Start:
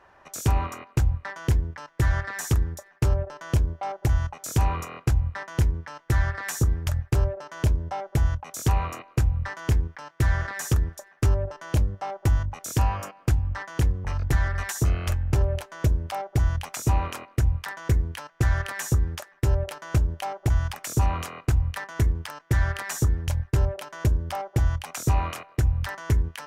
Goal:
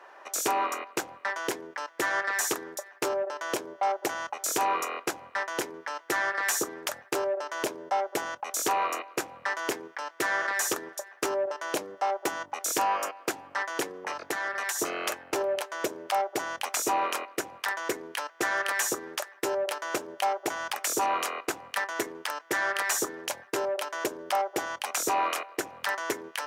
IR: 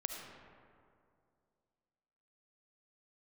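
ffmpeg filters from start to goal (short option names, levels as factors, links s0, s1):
-filter_complex "[0:a]highpass=f=350:w=0.5412,highpass=f=350:w=1.3066,asettb=1/sr,asplit=3[s0][s1][s2];[s0]atrim=end=14.004[s3];[s1]atrim=start=14:end=14.79,asetpts=PTS-STARTPTS,afade=t=in:d=0.004:c=qsin,afade=t=out:st=0.786:d=0.004:c=qsin,acompressor=threshold=0.0224:ratio=5[s4];[s2]atrim=start=14.786[s5];[s3][s4]acrossfade=d=0.004:c1=hsin:c2=qsin[s6];[s6][s5]acrossfade=d=0.004:c1=qsin:c2=hsin,asoftclip=type=tanh:threshold=0.0891,volume=1.88"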